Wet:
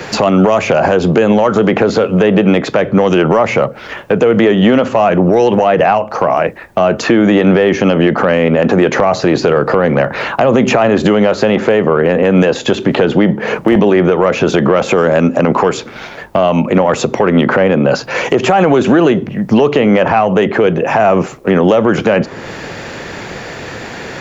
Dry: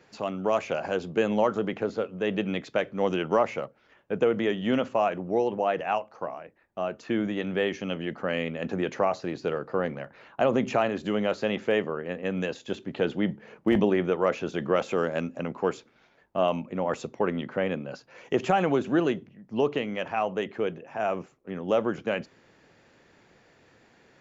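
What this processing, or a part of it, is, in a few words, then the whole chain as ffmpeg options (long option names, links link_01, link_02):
mastering chain: -filter_complex "[0:a]equalizer=frequency=280:width_type=o:width=0.77:gain=-2.5,acrossover=split=230|1600[link_01][link_02][link_03];[link_01]acompressor=threshold=-47dB:ratio=4[link_04];[link_02]acompressor=threshold=-34dB:ratio=4[link_05];[link_03]acompressor=threshold=-52dB:ratio=4[link_06];[link_04][link_05][link_06]amix=inputs=3:normalize=0,acompressor=threshold=-38dB:ratio=2,asoftclip=type=tanh:threshold=-27.5dB,alimiter=level_in=34.5dB:limit=-1dB:release=50:level=0:latency=1,volume=-1dB"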